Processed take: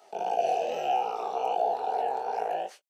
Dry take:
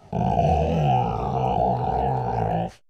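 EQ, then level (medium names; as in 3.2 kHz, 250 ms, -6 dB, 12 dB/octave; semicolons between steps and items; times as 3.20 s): high-pass 390 Hz 24 dB/octave; treble shelf 4.4 kHz +7 dB; -4.5 dB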